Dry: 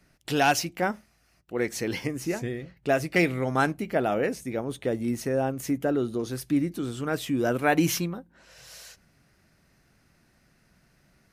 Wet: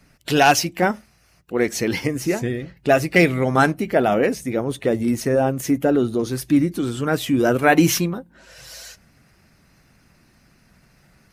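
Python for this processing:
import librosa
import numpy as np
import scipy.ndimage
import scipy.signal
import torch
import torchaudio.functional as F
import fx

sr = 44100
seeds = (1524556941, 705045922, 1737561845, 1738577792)

y = fx.spec_quant(x, sr, step_db=15)
y = y * 10.0 ** (8.0 / 20.0)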